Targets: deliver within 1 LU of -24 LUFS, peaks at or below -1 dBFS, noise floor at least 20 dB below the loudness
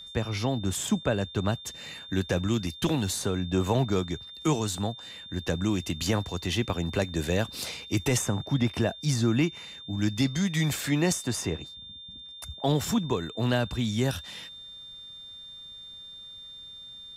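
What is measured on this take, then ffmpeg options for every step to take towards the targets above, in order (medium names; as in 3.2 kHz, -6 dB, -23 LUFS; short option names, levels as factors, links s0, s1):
steady tone 3.6 kHz; tone level -42 dBFS; loudness -28.5 LUFS; peak level -14.0 dBFS; loudness target -24.0 LUFS
-> -af "bandreject=f=3600:w=30"
-af "volume=1.68"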